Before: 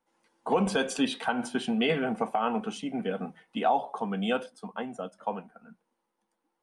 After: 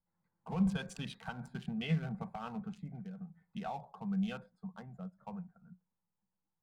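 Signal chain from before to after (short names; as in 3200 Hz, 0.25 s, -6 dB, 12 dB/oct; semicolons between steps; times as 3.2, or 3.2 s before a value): Wiener smoothing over 15 samples; EQ curve 180 Hz 0 dB, 260 Hz -27 dB, 2000 Hz -16 dB; 2.89–3.42 compressor 6:1, threshold -48 dBFS, peak gain reduction 10.5 dB; gain +5 dB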